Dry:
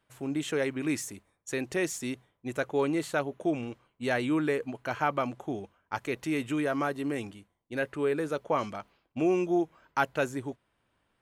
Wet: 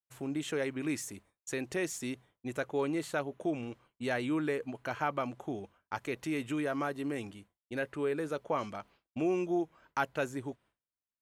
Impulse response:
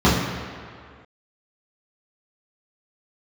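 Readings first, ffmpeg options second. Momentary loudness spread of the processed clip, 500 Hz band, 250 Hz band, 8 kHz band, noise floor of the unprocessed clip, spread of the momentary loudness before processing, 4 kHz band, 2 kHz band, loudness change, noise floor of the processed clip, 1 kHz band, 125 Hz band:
10 LU, -4.5 dB, -4.0 dB, -3.5 dB, -76 dBFS, 11 LU, -4.0 dB, -4.5 dB, -4.5 dB, under -85 dBFS, -4.5 dB, -4.0 dB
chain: -filter_complex "[0:a]agate=range=-33dB:threshold=-54dB:ratio=3:detection=peak,asplit=2[a][b];[b]acompressor=threshold=-40dB:ratio=6,volume=0dB[c];[a][c]amix=inputs=2:normalize=0,volume=-6dB"

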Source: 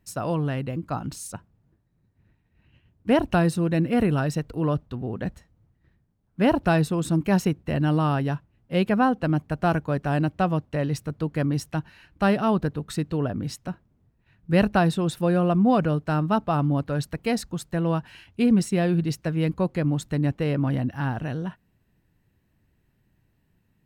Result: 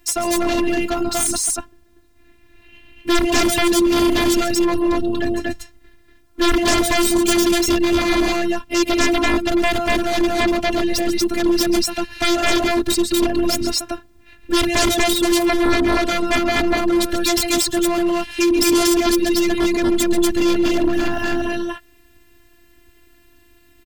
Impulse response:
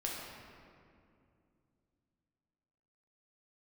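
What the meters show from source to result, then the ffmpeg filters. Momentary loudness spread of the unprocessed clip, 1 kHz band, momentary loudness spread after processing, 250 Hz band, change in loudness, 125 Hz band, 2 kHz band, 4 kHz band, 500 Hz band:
11 LU, +5.5 dB, 6 LU, +6.0 dB, +6.5 dB, -10.0 dB, +10.5 dB, +18.0 dB, +8.0 dB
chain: -filter_complex "[0:a]aecho=1:1:137|239.1:0.316|0.891,acrossover=split=2000[a][b];[b]acontrast=75[c];[a][c]amix=inputs=2:normalize=0,afftfilt=real='hypot(re,im)*cos(PI*b)':imag='0':win_size=512:overlap=0.75,aeval=exprs='0.562*sin(PI/2*6.31*val(0)/0.562)':c=same,acrossover=split=300|3000[d][e][f];[e]acompressor=threshold=-28dB:ratio=1.5[g];[d][g][f]amix=inputs=3:normalize=0,volume=-3dB"

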